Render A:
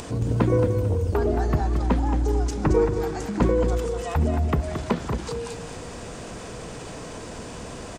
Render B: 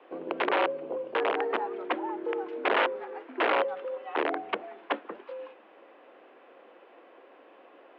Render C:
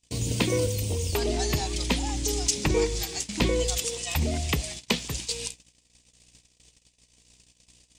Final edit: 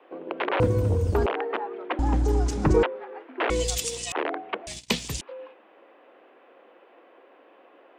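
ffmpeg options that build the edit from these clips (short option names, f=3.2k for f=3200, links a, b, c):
-filter_complex "[0:a]asplit=2[a][b];[2:a]asplit=2[c][d];[1:a]asplit=5[e][f][g][h][i];[e]atrim=end=0.602[j];[a]atrim=start=0.598:end=1.262[k];[f]atrim=start=1.258:end=1.992[l];[b]atrim=start=1.988:end=2.832[m];[g]atrim=start=2.828:end=3.502[n];[c]atrim=start=3.498:end=4.122[o];[h]atrim=start=4.118:end=4.672[p];[d]atrim=start=4.668:end=5.212[q];[i]atrim=start=5.208[r];[j][k]acrossfade=d=0.004:c1=hsin:c2=hsin[s];[s][l]acrossfade=d=0.004:c1=hsin:c2=hsin[t];[t][m]acrossfade=d=0.004:c1=hsin:c2=hsin[u];[u][n]acrossfade=d=0.004:c1=hsin:c2=hsin[v];[v][o]acrossfade=d=0.004:c1=hsin:c2=hsin[w];[w][p]acrossfade=d=0.004:c1=hsin:c2=hsin[x];[x][q]acrossfade=d=0.004:c1=hsin:c2=hsin[y];[y][r]acrossfade=d=0.004:c1=hsin:c2=hsin"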